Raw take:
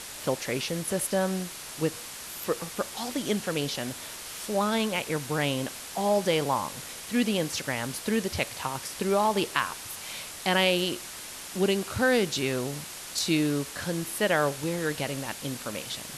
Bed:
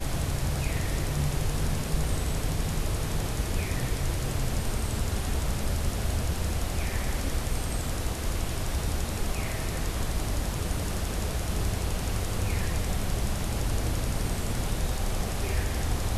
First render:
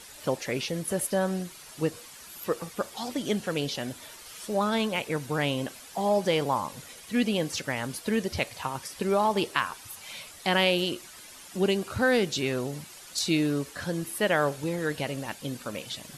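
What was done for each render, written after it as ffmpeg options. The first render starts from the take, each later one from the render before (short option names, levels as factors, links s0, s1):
-af "afftdn=nr=10:nf=-41"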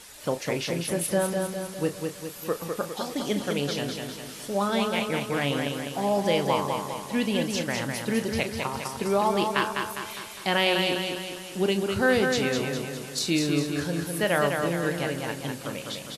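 -filter_complex "[0:a]asplit=2[s0][s1];[s1]adelay=35,volume=0.282[s2];[s0][s2]amix=inputs=2:normalize=0,asplit=2[s3][s4];[s4]aecho=0:1:203|406|609|812|1015|1218|1421:0.596|0.316|0.167|0.0887|0.047|0.0249|0.0132[s5];[s3][s5]amix=inputs=2:normalize=0"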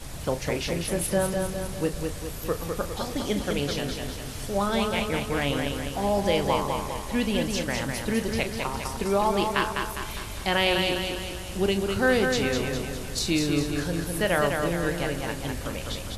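-filter_complex "[1:a]volume=0.355[s0];[0:a][s0]amix=inputs=2:normalize=0"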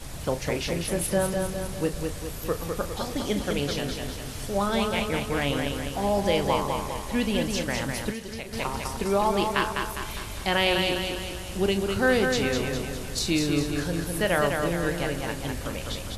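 -filter_complex "[0:a]asettb=1/sr,asplit=3[s0][s1][s2];[s0]atrim=end=8.104[s3];[s1]atrim=start=8.1:end=8.53,asetpts=PTS-STARTPTS,afade=t=in:d=0.004:c=qsin,afade=t=out:st=0.426:d=0.004:c=qsin,acrossover=split=2400|7300[s4][s5][s6];[s4]acompressor=threshold=0.0178:ratio=4[s7];[s5]acompressor=threshold=0.00708:ratio=4[s8];[s6]acompressor=threshold=0.00251:ratio=4[s9];[s7][s8][s9]amix=inputs=3:normalize=0[s10];[s2]atrim=start=8.526[s11];[s3][s10]acrossfade=d=0.004:c1=hsin:c2=qsin[s12];[s12][s11]acrossfade=d=0.004:c1=qsin:c2=hsin"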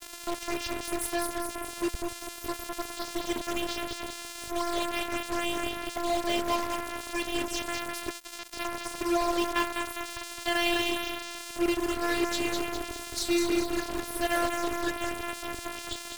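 -af "afftfilt=real='hypot(re,im)*cos(PI*b)':imag='0':win_size=512:overlap=0.75,acrusher=bits=4:mix=0:aa=0.5"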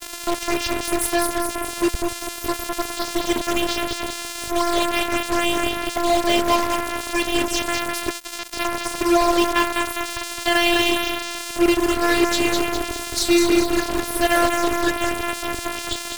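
-af "volume=3.16,alimiter=limit=0.708:level=0:latency=1"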